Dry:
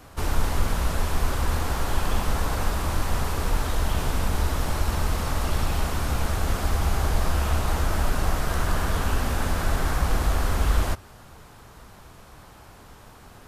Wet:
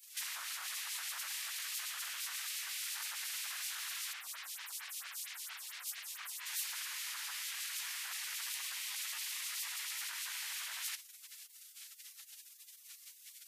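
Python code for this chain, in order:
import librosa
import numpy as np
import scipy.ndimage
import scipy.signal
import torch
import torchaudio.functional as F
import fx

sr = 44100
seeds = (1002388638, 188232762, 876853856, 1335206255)

y = fx.spec_gate(x, sr, threshold_db=-30, keep='weak')
y = scipy.signal.sosfilt(scipy.signal.butter(4, 1000.0, 'highpass', fs=sr, output='sos'), y)
y = fx.over_compress(y, sr, threshold_db=-45.0, ratio=-1.0)
y = fx.stagger_phaser(y, sr, hz=4.4, at=(4.12, 6.45), fade=0.02)
y = y * librosa.db_to_amplitude(3.0)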